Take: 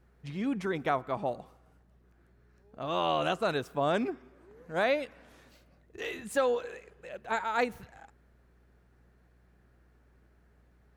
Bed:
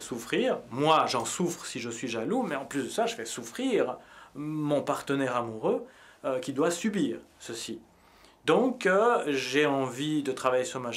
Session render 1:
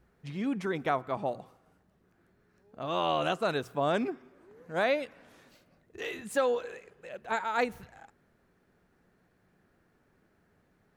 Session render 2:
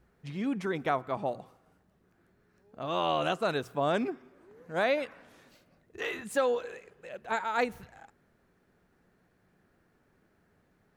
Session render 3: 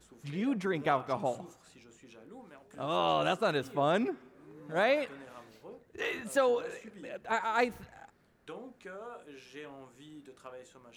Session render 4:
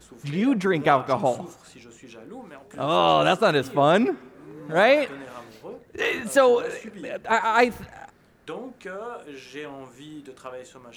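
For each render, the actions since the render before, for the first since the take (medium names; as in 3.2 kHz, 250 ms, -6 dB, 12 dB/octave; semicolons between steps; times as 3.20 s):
de-hum 60 Hz, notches 2
4.97–6.24 s: dynamic bell 1.2 kHz, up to +8 dB, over -55 dBFS, Q 0.97
add bed -22 dB
trim +10 dB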